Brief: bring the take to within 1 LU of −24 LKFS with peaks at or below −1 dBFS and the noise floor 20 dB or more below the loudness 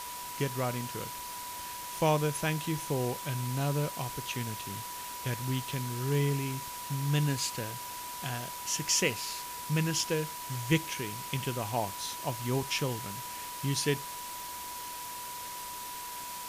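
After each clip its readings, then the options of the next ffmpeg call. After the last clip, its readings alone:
interfering tone 980 Hz; level of the tone −41 dBFS; background noise floor −41 dBFS; target noise floor −53 dBFS; integrated loudness −33.0 LKFS; sample peak −13.5 dBFS; target loudness −24.0 LKFS
→ -af "bandreject=frequency=980:width=30"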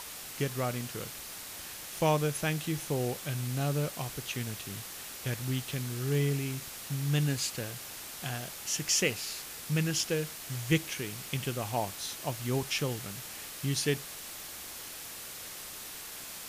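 interfering tone none found; background noise floor −44 dBFS; target noise floor −54 dBFS
→ -af "afftdn=noise_reduction=10:noise_floor=-44"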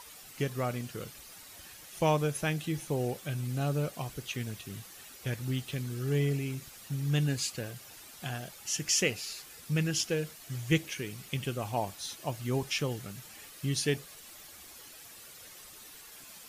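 background noise floor −51 dBFS; target noise floor −53 dBFS
→ -af "afftdn=noise_reduction=6:noise_floor=-51"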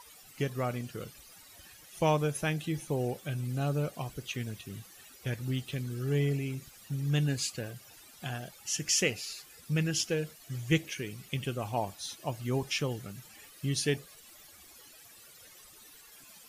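background noise floor −55 dBFS; integrated loudness −33.0 LKFS; sample peak −14.0 dBFS; target loudness −24.0 LKFS
→ -af "volume=9dB"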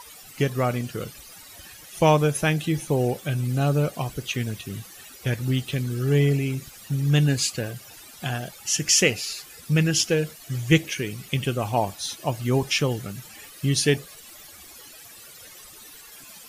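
integrated loudness −24.0 LKFS; sample peak −5.0 dBFS; background noise floor −46 dBFS

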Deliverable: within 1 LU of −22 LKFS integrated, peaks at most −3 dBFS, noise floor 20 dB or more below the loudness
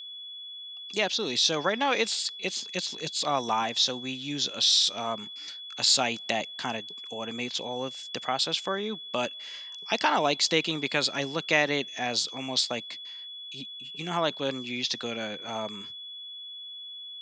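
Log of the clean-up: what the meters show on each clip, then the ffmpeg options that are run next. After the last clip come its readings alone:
interfering tone 3,400 Hz; level of the tone −39 dBFS; integrated loudness −28.0 LKFS; sample peak −7.0 dBFS; target loudness −22.0 LKFS
→ -af "bandreject=frequency=3400:width=30"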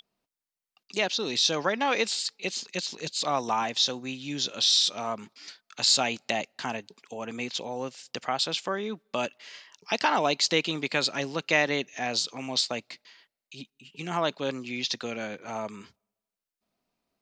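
interfering tone none found; integrated loudness −27.5 LKFS; sample peak −7.5 dBFS; target loudness −22.0 LKFS
→ -af "volume=5.5dB,alimiter=limit=-3dB:level=0:latency=1"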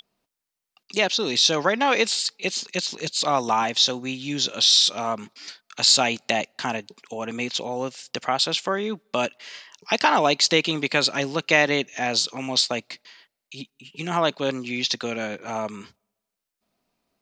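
integrated loudness −22.5 LKFS; sample peak −3.0 dBFS; background noise floor −84 dBFS

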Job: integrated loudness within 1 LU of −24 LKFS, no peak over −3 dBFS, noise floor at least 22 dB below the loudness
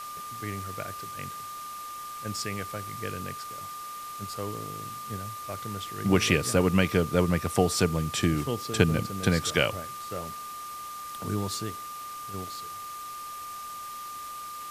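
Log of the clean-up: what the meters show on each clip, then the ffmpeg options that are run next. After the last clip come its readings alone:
interfering tone 1,200 Hz; level of the tone −37 dBFS; background noise floor −39 dBFS; target noise floor −52 dBFS; integrated loudness −30.0 LKFS; sample peak −5.0 dBFS; target loudness −24.0 LKFS
→ -af "bandreject=frequency=1200:width=30"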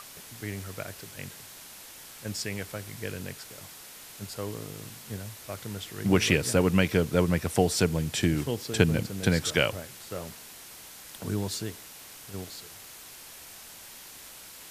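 interfering tone none found; background noise floor −47 dBFS; target noise floor −51 dBFS
→ -af "afftdn=noise_reduction=6:noise_floor=-47"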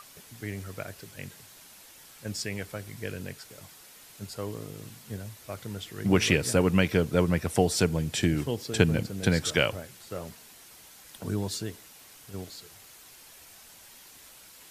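background noise floor −52 dBFS; integrated loudness −28.5 LKFS; sample peak −5.0 dBFS; target loudness −24.0 LKFS
→ -af "volume=4.5dB,alimiter=limit=-3dB:level=0:latency=1"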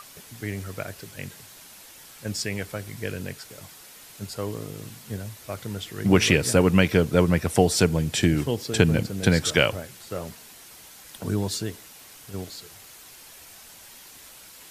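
integrated loudness −24.5 LKFS; sample peak −3.0 dBFS; background noise floor −47 dBFS

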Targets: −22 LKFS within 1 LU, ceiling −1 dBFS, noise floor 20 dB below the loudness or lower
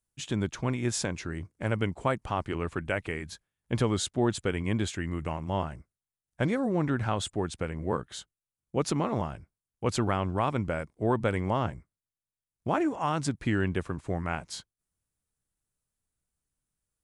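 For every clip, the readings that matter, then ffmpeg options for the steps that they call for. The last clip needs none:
integrated loudness −30.5 LKFS; sample peak −12.5 dBFS; target loudness −22.0 LKFS
→ -af "volume=8.5dB"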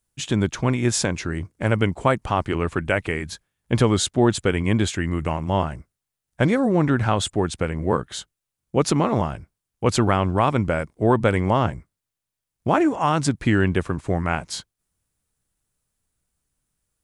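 integrated loudness −22.0 LKFS; sample peak −4.0 dBFS; background noise floor −85 dBFS

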